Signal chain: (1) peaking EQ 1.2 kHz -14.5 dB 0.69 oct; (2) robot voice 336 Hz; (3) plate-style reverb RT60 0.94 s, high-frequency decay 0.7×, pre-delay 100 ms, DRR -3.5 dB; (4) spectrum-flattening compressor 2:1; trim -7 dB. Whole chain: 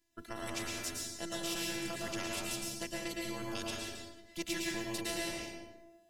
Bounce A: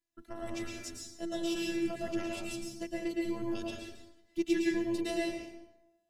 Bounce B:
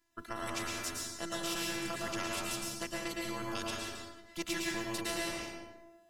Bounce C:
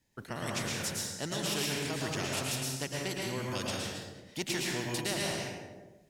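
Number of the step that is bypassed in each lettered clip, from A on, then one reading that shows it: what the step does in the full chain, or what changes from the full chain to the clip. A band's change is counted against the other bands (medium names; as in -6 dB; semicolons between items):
4, 250 Hz band +9.5 dB; 1, 1 kHz band +4.0 dB; 2, 125 Hz band +6.5 dB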